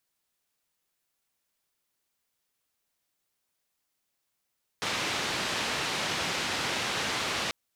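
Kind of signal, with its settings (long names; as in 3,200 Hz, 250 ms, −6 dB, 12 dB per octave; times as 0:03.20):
band-limited noise 87–3,900 Hz, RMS −31 dBFS 2.69 s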